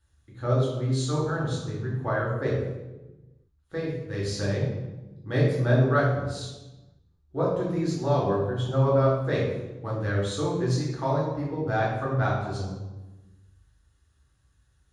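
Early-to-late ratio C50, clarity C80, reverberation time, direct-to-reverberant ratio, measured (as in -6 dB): 1.5 dB, 4.5 dB, 1.1 s, -5.0 dB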